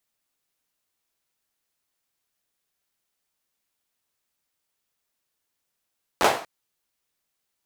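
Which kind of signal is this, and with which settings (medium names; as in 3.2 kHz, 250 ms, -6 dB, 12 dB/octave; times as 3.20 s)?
hand clap length 0.24 s, apart 11 ms, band 680 Hz, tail 0.43 s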